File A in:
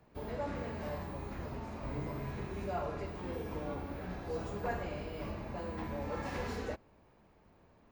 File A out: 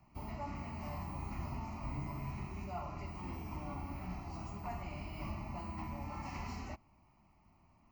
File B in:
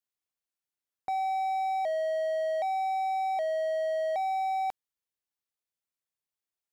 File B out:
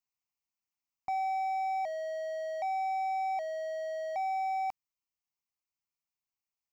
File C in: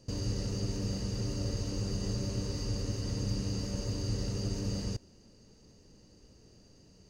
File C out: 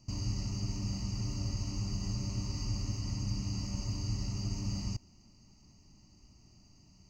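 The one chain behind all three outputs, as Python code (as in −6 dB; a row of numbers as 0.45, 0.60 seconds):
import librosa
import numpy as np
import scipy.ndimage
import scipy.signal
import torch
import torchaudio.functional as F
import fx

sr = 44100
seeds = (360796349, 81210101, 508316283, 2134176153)

y = fx.rider(x, sr, range_db=10, speed_s=0.5)
y = fx.fixed_phaser(y, sr, hz=2400.0, stages=8)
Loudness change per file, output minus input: −3.5, −4.0, −1.5 LU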